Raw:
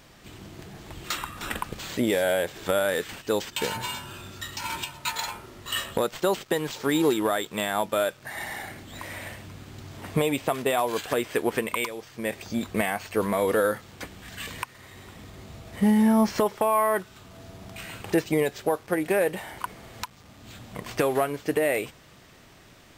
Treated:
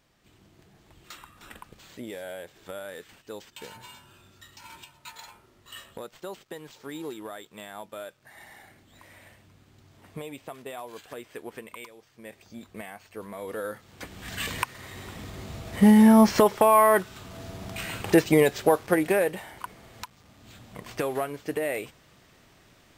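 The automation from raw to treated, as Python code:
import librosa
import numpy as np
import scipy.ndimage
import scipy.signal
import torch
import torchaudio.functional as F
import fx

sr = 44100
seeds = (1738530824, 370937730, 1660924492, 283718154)

y = fx.gain(x, sr, db=fx.line((13.32, -14.5), (13.83, -8.0), (14.3, 4.5), (18.87, 4.5), (19.51, -5.0)))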